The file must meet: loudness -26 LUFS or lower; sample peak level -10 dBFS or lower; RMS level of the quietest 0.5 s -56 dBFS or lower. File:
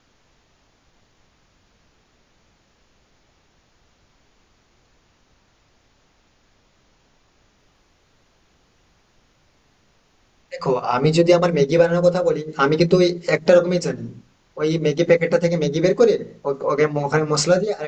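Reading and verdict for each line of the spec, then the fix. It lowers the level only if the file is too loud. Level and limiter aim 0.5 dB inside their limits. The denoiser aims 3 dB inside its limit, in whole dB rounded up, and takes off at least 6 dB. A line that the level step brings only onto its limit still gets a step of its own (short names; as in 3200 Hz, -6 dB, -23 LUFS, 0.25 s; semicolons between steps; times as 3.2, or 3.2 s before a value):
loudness -18.5 LUFS: fail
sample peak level -3.0 dBFS: fail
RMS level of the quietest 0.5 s -60 dBFS: OK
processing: gain -8 dB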